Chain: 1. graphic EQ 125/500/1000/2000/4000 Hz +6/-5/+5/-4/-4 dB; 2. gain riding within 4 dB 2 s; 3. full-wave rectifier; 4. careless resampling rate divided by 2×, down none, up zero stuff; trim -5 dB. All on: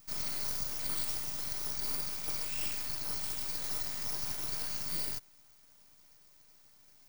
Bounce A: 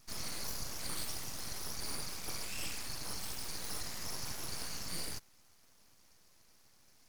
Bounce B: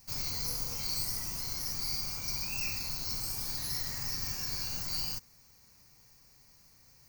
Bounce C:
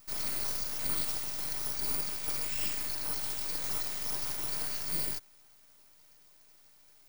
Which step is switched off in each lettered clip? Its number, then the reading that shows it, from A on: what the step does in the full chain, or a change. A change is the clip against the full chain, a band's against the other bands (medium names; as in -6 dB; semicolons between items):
4, crest factor change -3.0 dB; 3, 125 Hz band +4.5 dB; 1, 125 Hz band -2.0 dB